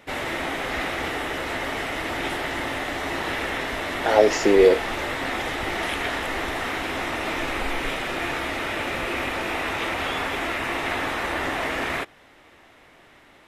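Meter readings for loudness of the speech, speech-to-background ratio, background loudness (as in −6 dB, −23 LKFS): −18.5 LKFS, 8.5 dB, −27.0 LKFS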